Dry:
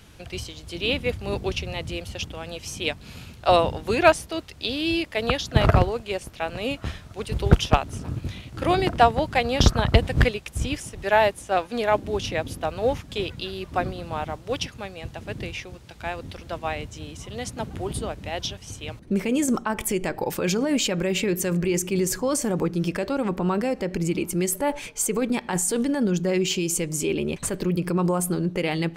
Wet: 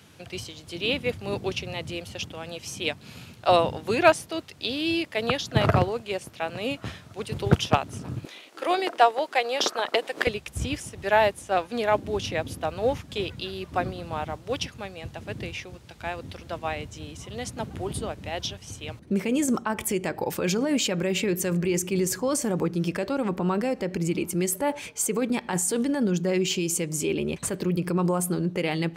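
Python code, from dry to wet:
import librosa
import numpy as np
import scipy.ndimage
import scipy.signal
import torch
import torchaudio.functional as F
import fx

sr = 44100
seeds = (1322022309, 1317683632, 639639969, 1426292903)

y = fx.highpass(x, sr, hz=fx.steps((0.0, 96.0), (8.25, 370.0), (10.27, 63.0)), slope=24)
y = y * librosa.db_to_amplitude(-1.5)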